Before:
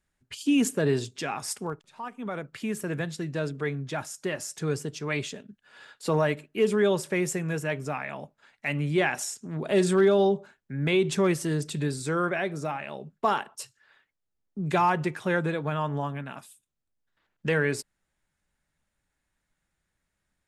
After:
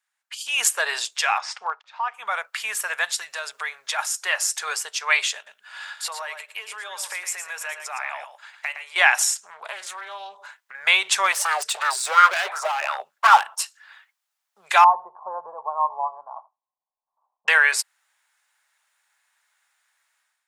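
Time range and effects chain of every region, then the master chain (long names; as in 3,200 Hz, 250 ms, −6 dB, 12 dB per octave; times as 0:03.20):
0:01.38–0:02.14: low-pass filter 5,400 Hz 24 dB per octave + high-shelf EQ 2,700 Hz −7.5 dB
0:03.04–0:03.99: high-shelf EQ 4,900 Hz +6.5 dB + downward compressor, threshold −31 dBFS
0:05.35–0:08.96: parametric band 170 Hz −5 dB 0.41 octaves + downward compressor, threshold −36 dBFS + single-tap delay 113 ms −8.5 dB
0:09.50–0:10.75: downward compressor 5 to 1, threshold −37 dBFS + hollow resonant body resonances 230/460/1,000/2,000 Hz, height 10 dB, ringing for 85 ms + highs frequency-modulated by the lows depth 0.23 ms
0:11.32–0:13.60: gain into a clipping stage and back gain 31 dB + auto-filter bell 2.8 Hz 210–1,500 Hz +17 dB
0:14.84–0:17.48: Chebyshev low-pass with heavy ripple 1,100 Hz, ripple 3 dB + single-tap delay 82 ms −21.5 dB
whole clip: inverse Chebyshev high-pass filter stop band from 320 Hz, stop band 50 dB; automatic gain control gain up to 12 dB; level +1.5 dB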